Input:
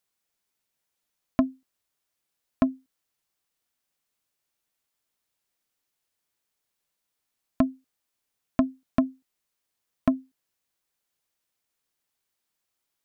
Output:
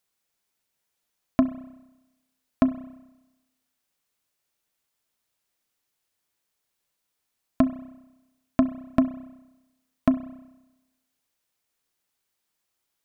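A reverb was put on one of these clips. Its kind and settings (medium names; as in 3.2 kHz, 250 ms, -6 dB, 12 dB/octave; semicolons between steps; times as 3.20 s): spring tank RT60 1 s, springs 31 ms, chirp 45 ms, DRR 13 dB; trim +2 dB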